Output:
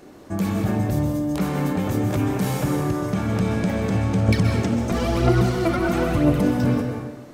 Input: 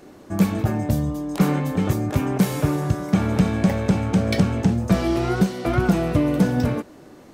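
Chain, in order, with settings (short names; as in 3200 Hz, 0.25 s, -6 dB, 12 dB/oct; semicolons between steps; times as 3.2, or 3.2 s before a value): limiter -15 dBFS, peak gain reduction 8 dB; 4.28–6.42 phaser 1 Hz, delay 3.9 ms, feedback 63%; plate-style reverb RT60 1.1 s, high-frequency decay 0.75×, pre-delay 0.115 s, DRR 3.5 dB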